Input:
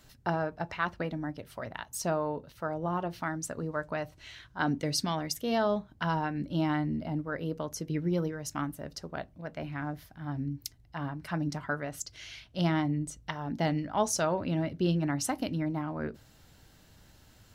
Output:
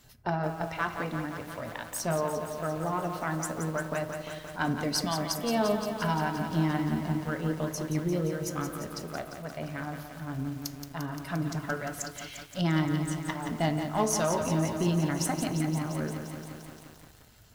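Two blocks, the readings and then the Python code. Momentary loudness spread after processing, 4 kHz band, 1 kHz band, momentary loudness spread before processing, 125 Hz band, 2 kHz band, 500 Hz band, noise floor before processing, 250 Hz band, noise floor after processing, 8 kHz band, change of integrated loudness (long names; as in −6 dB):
11 LU, +2.0 dB, +1.5 dB, 11 LU, +2.5 dB, +1.5 dB, +1.5 dB, −59 dBFS, +1.5 dB, −52 dBFS, +2.5 dB, +1.5 dB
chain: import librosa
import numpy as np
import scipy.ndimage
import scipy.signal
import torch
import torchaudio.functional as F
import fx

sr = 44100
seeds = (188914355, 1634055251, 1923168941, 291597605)

y = fx.spec_quant(x, sr, step_db=15)
y = fx.high_shelf(y, sr, hz=11000.0, db=6.5)
y = fx.rev_fdn(y, sr, rt60_s=0.99, lf_ratio=0.95, hf_ratio=0.35, size_ms=14.0, drr_db=9.0)
y = fx.cheby_harmonics(y, sr, harmonics=(6,), levels_db=(-28,), full_scale_db=-14.0)
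y = fx.echo_crushed(y, sr, ms=174, feedback_pct=80, bits=8, wet_db=-7.5)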